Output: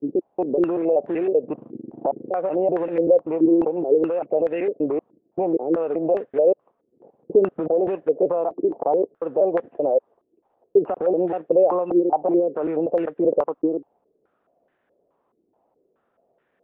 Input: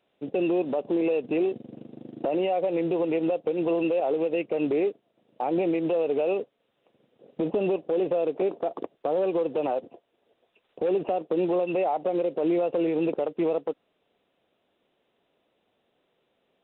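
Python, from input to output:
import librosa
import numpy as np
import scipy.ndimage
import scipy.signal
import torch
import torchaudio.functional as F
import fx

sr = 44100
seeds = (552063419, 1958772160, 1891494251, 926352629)

y = fx.block_reorder(x, sr, ms=192.0, group=2)
y = fx.filter_held_lowpass(y, sr, hz=4.7, low_hz=340.0, high_hz=1700.0)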